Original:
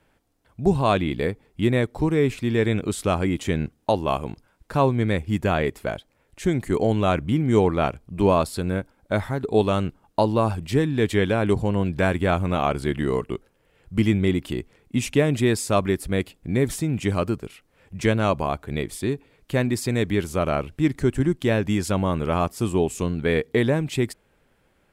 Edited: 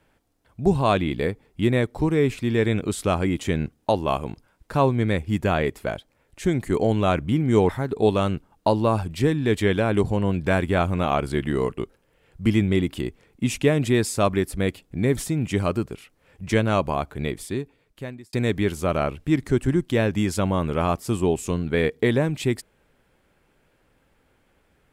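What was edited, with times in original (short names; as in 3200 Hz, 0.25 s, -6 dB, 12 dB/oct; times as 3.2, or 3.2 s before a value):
7.69–9.21 cut
18.76–19.85 fade out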